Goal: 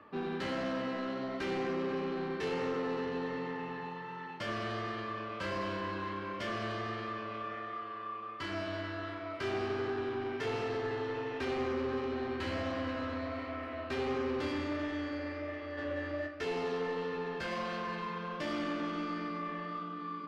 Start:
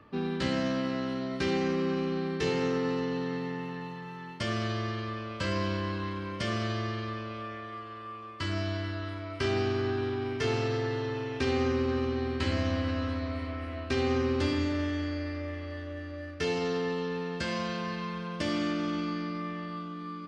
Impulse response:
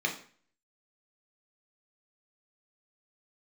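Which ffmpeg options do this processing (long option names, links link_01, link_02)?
-filter_complex "[0:a]asplit=3[link_01][link_02][link_03];[link_01]afade=type=out:start_time=15.77:duration=0.02[link_04];[link_02]acontrast=71,afade=type=in:start_time=15.77:duration=0.02,afade=type=out:start_time=16.26:duration=0.02[link_05];[link_03]afade=type=in:start_time=16.26:duration=0.02[link_06];[link_04][link_05][link_06]amix=inputs=3:normalize=0,asplit=2[link_07][link_08];[link_08]highpass=frequency=720:poles=1,volume=20dB,asoftclip=type=tanh:threshold=-16.5dB[link_09];[link_07][link_09]amix=inputs=2:normalize=0,lowpass=frequency=1400:poles=1,volume=-6dB,flanger=delay=2.7:depth=9.8:regen=-54:speed=1.4:shape=triangular,volume=-5dB"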